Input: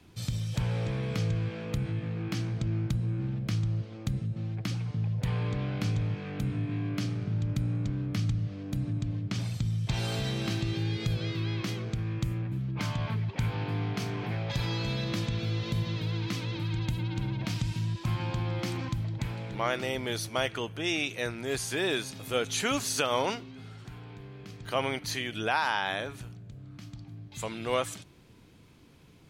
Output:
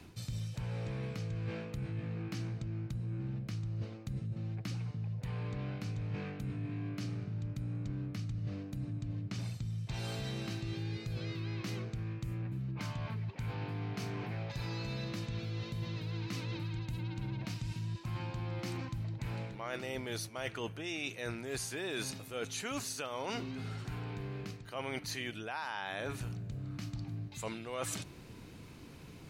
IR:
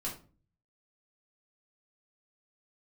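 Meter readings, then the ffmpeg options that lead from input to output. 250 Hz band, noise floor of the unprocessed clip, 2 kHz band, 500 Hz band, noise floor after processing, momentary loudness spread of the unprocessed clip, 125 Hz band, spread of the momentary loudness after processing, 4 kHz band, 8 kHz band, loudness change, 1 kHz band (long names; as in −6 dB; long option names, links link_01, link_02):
−7.0 dB, −51 dBFS, −8.5 dB, −8.5 dB, −51 dBFS, 6 LU, −7.0 dB, 3 LU, −9.0 dB, −6.0 dB, −8.0 dB, −9.5 dB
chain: -af "bandreject=frequency=3300:width=13,areverse,acompressor=threshold=-41dB:ratio=12,areverse,volume=5.5dB"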